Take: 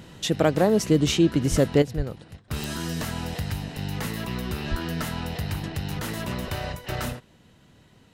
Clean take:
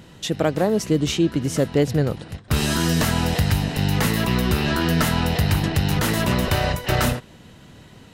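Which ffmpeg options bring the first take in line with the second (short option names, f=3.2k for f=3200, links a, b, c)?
-filter_complex "[0:a]adeclick=t=4,asplit=3[a][b][c];[a]afade=t=out:st=1.5:d=0.02[d];[b]highpass=f=140:w=0.5412,highpass=f=140:w=1.3066,afade=t=in:st=1.5:d=0.02,afade=t=out:st=1.62:d=0.02[e];[c]afade=t=in:st=1.62:d=0.02[f];[d][e][f]amix=inputs=3:normalize=0,asplit=3[g][h][i];[g]afade=t=out:st=1.96:d=0.02[j];[h]highpass=f=140:w=0.5412,highpass=f=140:w=1.3066,afade=t=in:st=1.96:d=0.02,afade=t=out:st=2.08:d=0.02[k];[i]afade=t=in:st=2.08:d=0.02[l];[j][k][l]amix=inputs=3:normalize=0,asplit=3[m][n][o];[m]afade=t=out:st=4.7:d=0.02[p];[n]highpass=f=140:w=0.5412,highpass=f=140:w=1.3066,afade=t=in:st=4.7:d=0.02,afade=t=out:st=4.82:d=0.02[q];[o]afade=t=in:st=4.82:d=0.02[r];[p][q][r]amix=inputs=3:normalize=0,asetnsamples=n=441:p=0,asendcmd='1.82 volume volume 10dB',volume=0dB"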